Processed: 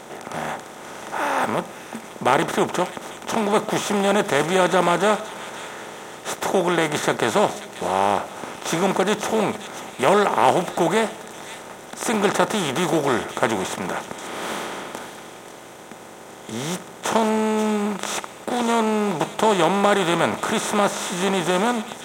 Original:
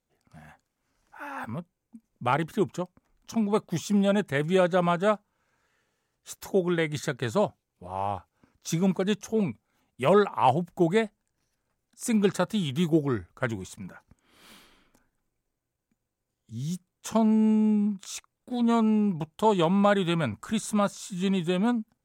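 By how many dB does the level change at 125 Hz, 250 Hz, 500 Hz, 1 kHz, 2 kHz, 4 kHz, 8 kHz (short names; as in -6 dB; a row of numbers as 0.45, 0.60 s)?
0.0, +1.0, +6.5, +9.5, +10.5, +10.5, +11.0 dB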